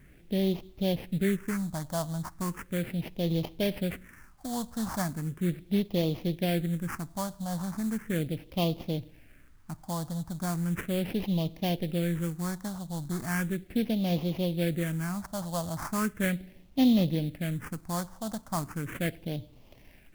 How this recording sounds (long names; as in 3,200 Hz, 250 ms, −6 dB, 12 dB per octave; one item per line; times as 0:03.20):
aliases and images of a low sample rate 3,900 Hz, jitter 20%
phaser sweep stages 4, 0.37 Hz, lowest notch 400–1,500 Hz
a quantiser's noise floor 12 bits, dither none